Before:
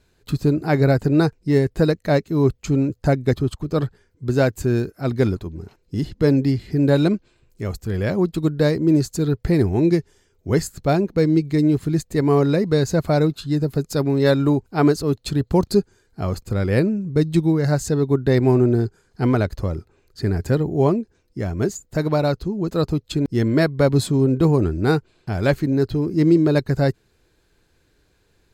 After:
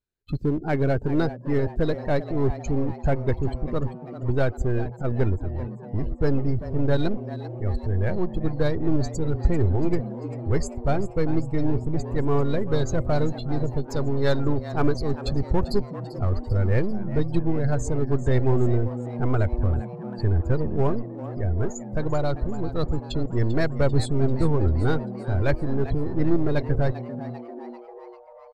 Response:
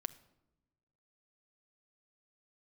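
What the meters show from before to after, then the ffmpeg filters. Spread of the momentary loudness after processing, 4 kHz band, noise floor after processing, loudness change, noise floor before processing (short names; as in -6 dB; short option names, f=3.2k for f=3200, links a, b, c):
8 LU, -7.5 dB, -41 dBFS, -6.0 dB, -63 dBFS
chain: -filter_complex "[0:a]aeval=exprs='if(lt(val(0),0),0.708*val(0),val(0))':c=same,afftdn=nr=26:nf=-32,asubboost=boost=7.5:cutoff=72,asplit=2[a][b];[b]aeval=exprs='0.0891*(abs(mod(val(0)/0.0891+3,4)-2)-1)':c=same,volume=-11dB[c];[a][c]amix=inputs=2:normalize=0,asplit=7[d][e][f][g][h][i][j];[e]adelay=393,afreqshift=120,volume=-14.5dB[k];[f]adelay=786,afreqshift=240,volume=-19.4dB[l];[g]adelay=1179,afreqshift=360,volume=-24.3dB[m];[h]adelay=1572,afreqshift=480,volume=-29.1dB[n];[i]adelay=1965,afreqshift=600,volume=-34dB[o];[j]adelay=2358,afreqshift=720,volume=-38.9dB[p];[d][k][l][m][n][o][p]amix=inputs=7:normalize=0,volume=-4dB"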